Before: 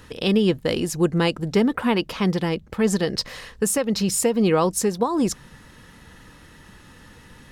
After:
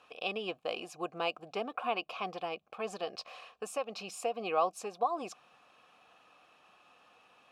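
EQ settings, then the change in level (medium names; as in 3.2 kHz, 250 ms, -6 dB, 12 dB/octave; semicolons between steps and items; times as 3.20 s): vowel filter a; tilt EQ +2 dB/octave; +2.0 dB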